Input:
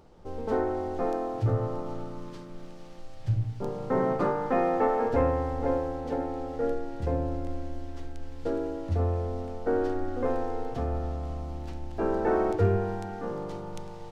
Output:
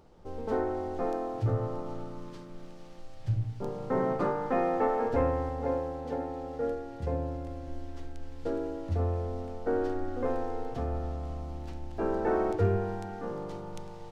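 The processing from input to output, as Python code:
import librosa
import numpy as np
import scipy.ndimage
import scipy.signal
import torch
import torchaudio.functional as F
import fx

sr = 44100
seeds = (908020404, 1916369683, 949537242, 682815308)

y = fx.notch_comb(x, sr, f0_hz=320.0, at=(5.49, 7.68))
y = y * 10.0 ** (-2.5 / 20.0)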